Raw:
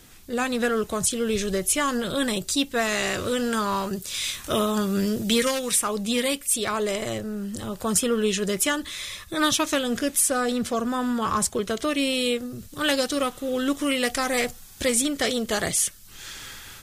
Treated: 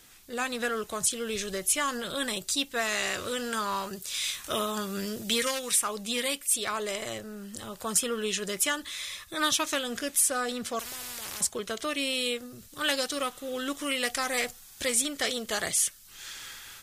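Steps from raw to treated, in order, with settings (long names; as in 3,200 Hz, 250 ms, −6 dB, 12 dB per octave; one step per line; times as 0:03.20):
low-shelf EQ 500 Hz −10 dB
0:10.79–0:11.41: every bin compressed towards the loudest bin 10 to 1
level −2.5 dB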